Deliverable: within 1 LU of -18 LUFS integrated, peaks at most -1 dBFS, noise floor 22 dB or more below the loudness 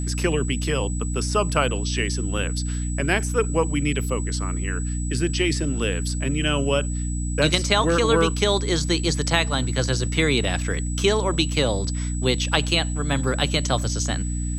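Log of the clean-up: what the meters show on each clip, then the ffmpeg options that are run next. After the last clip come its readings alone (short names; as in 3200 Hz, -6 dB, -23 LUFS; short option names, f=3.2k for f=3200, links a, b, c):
hum 60 Hz; harmonics up to 300 Hz; hum level -24 dBFS; steady tone 7900 Hz; tone level -35 dBFS; loudness -23.0 LUFS; peak -4.0 dBFS; loudness target -18.0 LUFS
-> -af "bandreject=f=60:t=h:w=6,bandreject=f=120:t=h:w=6,bandreject=f=180:t=h:w=6,bandreject=f=240:t=h:w=6,bandreject=f=300:t=h:w=6"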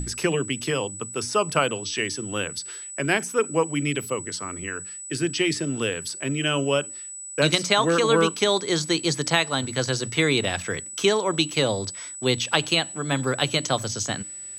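hum none; steady tone 7900 Hz; tone level -35 dBFS
-> -af "bandreject=f=7.9k:w=30"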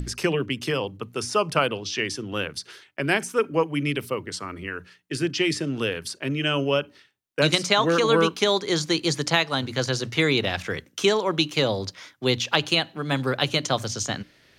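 steady tone none; loudness -24.5 LUFS; peak -4.5 dBFS; loudness target -18.0 LUFS
-> -af "volume=6.5dB,alimiter=limit=-1dB:level=0:latency=1"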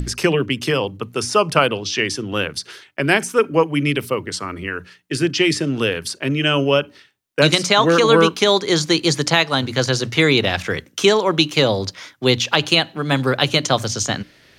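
loudness -18.0 LUFS; peak -1.0 dBFS; noise floor -52 dBFS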